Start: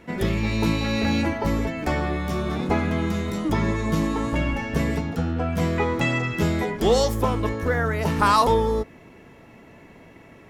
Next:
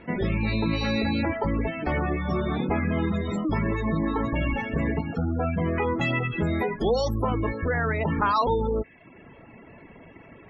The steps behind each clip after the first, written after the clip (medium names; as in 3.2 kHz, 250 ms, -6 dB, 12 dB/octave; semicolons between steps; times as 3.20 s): spectral gate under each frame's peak -25 dB strong; reverb removal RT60 0.68 s; in parallel at -2 dB: compressor with a negative ratio -26 dBFS, ratio -0.5; on the sum: trim -4.5 dB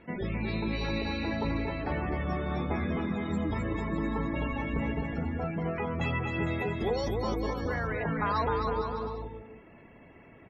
bouncing-ball echo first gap 260 ms, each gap 0.75×, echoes 5; trim -7.5 dB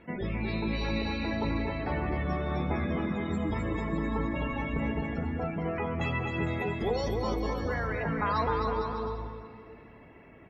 plate-style reverb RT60 2.8 s, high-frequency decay 0.9×, DRR 11 dB